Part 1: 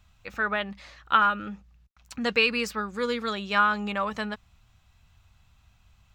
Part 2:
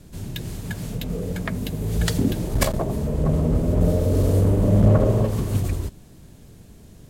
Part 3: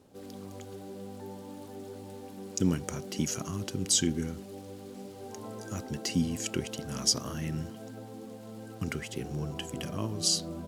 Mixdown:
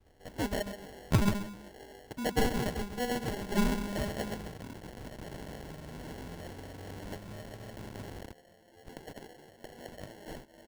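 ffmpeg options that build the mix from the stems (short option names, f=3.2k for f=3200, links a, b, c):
-filter_complex "[0:a]equalizer=f=6.7k:w=1.4:g=11.5,volume=-6dB,asplit=3[a][b][c];[b]volume=-9.5dB[d];[1:a]acrusher=bits=3:mix=0:aa=0.000001,acrossover=split=170|3500[e][f][g];[e]acompressor=threshold=-30dB:ratio=4[h];[f]acompressor=threshold=-25dB:ratio=4[i];[g]acompressor=threshold=-32dB:ratio=4[j];[h][i][j]amix=inputs=3:normalize=0,adelay=2450,volume=-6.5dB[k];[2:a]highpass=640,adelay=50,volume=1dB[l];[c]apad=whole_len=472819[m];[l][m]sidechaincompress=threshold=-42dB:ratio=8:attack=16:release=152[n];[k][n]amix=inputs=2:normalize=0,tremolo=f=1.1:d=0.68,acompressor=threshold=-40dB:ratio=12,volume=0dB[o];[d]aecho=0:1:133:1[p];[a][o][p]amix=inputs=3:normalize=0,acrusher=samples=36:mix=1:aa=0.000001"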